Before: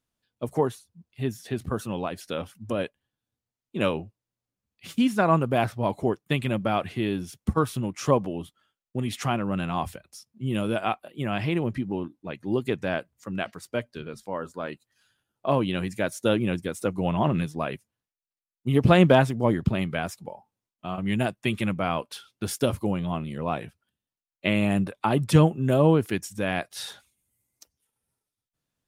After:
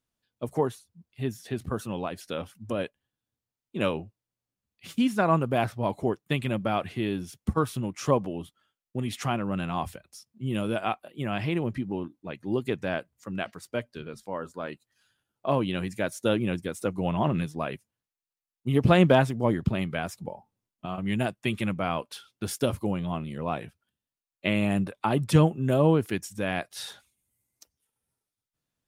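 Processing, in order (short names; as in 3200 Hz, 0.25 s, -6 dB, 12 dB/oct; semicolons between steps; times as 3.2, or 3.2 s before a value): 20.13–20.86 low shelf 440 Hz +8 dB; gain -2 dB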